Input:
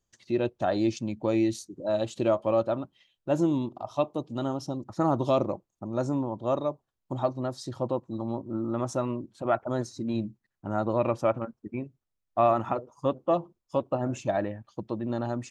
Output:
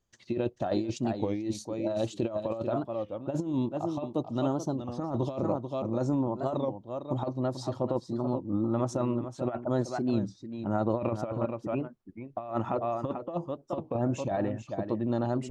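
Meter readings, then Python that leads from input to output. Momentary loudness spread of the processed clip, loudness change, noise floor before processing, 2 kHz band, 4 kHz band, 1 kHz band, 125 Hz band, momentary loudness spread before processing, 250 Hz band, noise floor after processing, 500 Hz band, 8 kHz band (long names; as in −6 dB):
6 LU, −2.5 dB, −83 dBFS, −5.5 dB, −3.0 dB, −4.5 dB, +0.5 dB, 10 LU, −0.5 dB, −57 dBFS, −3.5 dB, −2.0 dB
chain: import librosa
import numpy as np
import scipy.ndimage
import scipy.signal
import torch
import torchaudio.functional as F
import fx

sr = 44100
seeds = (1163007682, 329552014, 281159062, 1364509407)

p1 = fx.high_shelf(x, sr, hz=7700.0, db=-10.5)
p2 = p1 + fx.echo_single(p1, sr, ms=438, db=-10.5, dry=0)
p3 = fx.over_compress(p2, sr, threshold_db=-27.0, ratio=-0.5)
p4 = fx.dynamic_eq(p3, sr, hz=1700.0, q=0.87, threshold_db=-46.0, ratio=4.0, max_db=-4)
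y = fx.record_warp(p4, sr, rpm=33.33, depth_cents=160.0)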